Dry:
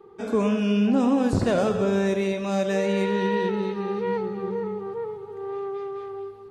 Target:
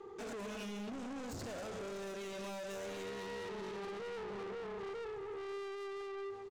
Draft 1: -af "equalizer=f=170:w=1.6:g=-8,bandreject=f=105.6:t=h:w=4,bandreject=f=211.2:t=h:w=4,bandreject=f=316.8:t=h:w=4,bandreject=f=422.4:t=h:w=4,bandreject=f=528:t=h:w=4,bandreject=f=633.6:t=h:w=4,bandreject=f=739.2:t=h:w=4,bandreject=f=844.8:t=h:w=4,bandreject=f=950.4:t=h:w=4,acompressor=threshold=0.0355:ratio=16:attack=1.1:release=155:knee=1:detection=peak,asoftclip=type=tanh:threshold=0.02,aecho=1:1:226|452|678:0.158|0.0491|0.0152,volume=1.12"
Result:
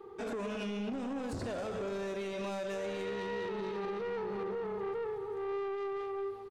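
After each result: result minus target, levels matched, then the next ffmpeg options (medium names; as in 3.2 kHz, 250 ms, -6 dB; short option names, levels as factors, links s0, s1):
8 kHz band -8.5 dB; saturation: distortion -7 dB
-af "lowpass=f=6900:t=q:w=3,equalizer=f=170:w=1.6:g=-8,bandreject=f=105.6:t=h:w=4,bandreject=f=211.2:t=h:w=4,bandreject=f=316.8:t=h:w=4,bandreject=f=422.4:t=h:w=4,bandreject=f=528:t=h:w=4,bandreject=f=633.6:t=h:w=4,bandreject=f=739.2:t=h:w=4,bandreject=f=844.8:t=h:w=4,bandreject=f=950.4:t=h:w=4,acompressor=threshold=0.0355:ratio=16:attack=1.1:release=155:knee=1:detection=peak,asoftclip=type=tanh:threshold=0.02,aecho=1:1:226|452|678:0.158|0.0491|0.0152,volume=1.12"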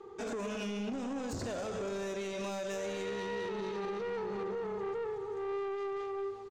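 saturation: distortion -7 dB
-af "lowpass=f=6900:t=q:w=3,equalizer=f=170:w=1.6:g=-8,bandreject=f=105.6:t=h:w=4,bandreject=f=211.2:t=h:w=4,bandreject=f=316.8:t=h:w=4,bandreject=f=422.4:t=h:w=4,bandreject=f=528:t=h:w=4,bandreject=f=633.6:t=h:w=4,bandreject=f=739.2:t=h:w=4,bandreject=f=844.8:t=h:w=4,bandreject=f=950.4:t=h:w=4,acompressor=threshold=0.0355:ratio=16:attack=1.1:release=155:knee=1:detection=peak,asoftclip=type=tanh:threshold=0.00708,aecho=1:1:226|452|678:0.158|0.0491|0.0152,volume=1.12"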